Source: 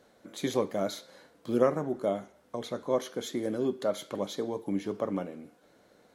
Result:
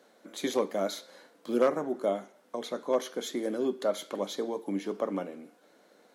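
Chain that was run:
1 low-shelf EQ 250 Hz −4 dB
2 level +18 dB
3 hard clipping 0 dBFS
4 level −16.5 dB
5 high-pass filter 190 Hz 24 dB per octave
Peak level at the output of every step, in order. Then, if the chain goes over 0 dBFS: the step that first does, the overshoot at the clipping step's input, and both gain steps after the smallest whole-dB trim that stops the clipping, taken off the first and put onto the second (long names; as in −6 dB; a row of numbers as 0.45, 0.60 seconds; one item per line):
−13.0, +5.0, 0.0, −16.5, −11.5 dBFS
step 2, 5.0 dB
step 2 +13 dB, step 4 −11.5 dB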